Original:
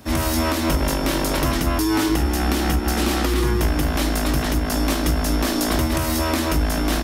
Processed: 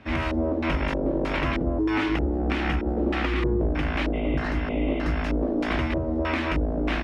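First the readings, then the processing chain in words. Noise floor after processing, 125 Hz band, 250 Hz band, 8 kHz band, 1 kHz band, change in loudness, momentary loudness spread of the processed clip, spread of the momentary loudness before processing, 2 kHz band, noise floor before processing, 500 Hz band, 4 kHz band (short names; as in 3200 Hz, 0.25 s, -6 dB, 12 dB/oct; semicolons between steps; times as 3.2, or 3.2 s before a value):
-28 dBFS, -5.5 dB, -4.0 dB, under -25 dB, -6.0 dB, -5.0 dB, 2 LU, 1 LU, -2.5 dB, -23 dBFS, -2.5 dB, -10.5 dB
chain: LFO low-pass square 1.6 Hz 510–2400 Hz; spectral repair 4.16–5.1, 1900–3800 Hz after; gain -5.5 dB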